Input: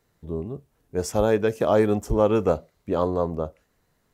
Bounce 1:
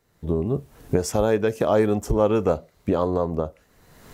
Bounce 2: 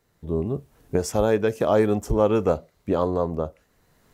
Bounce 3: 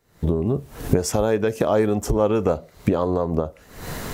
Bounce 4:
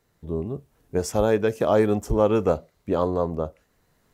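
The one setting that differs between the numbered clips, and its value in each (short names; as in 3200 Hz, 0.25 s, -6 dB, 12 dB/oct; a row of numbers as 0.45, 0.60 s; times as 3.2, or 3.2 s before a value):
recorder AGC, rising by: 33, 13, 83, 5.3 dB/s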